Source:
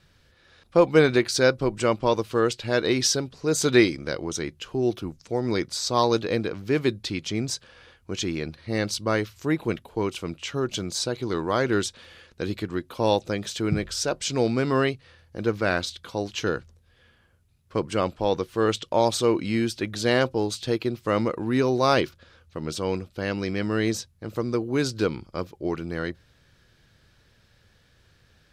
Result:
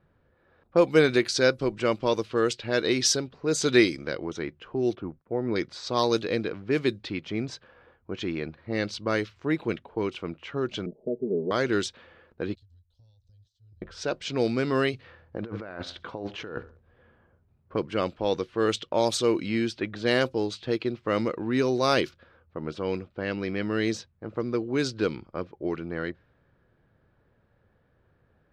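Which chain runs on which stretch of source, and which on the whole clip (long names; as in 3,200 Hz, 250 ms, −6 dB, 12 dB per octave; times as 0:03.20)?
0:04.95–0:05.56: low-pass filter 1,700 Hz + downward expander −51 dBFS
0:10.86–0:11.51: Butterworth low-pass 620 Hz 48 dB per octave + parametric band 73 Hz −13 dB 1.1 octaves + comb filter 4.8 ms, depth 98%
0:12.55–0:13.82: inverse Chebyshev band-stop filter 170–2,300 Hz + downward compressor 12 to 1, threshold −47 dBFS
0:14.93–0:17.76: repeating echo 65 ms, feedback 37%, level −22 dB + compressor whose output falls as the input rises −33 dBFS
whole clip: low-shelf EQ 140 Hz −8.5 dB; low-pass that shuts in the quiet parts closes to 1,000 Hz, open at −17.5 dBFS; dynamic equaliser 890 Hz, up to −5 dB, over −37 dBFS, Q 1.3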